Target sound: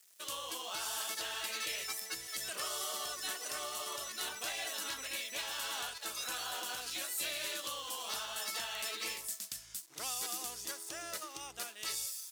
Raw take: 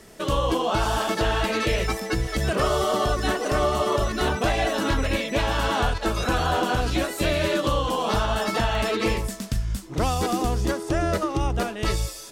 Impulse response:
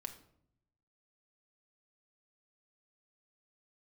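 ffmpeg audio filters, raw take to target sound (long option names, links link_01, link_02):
-af "aeval=exprs='sgn(val(0))*max(abs(val(0))-0.00447,0)':channel_layout=same,aderivative,volume=-1.5dB"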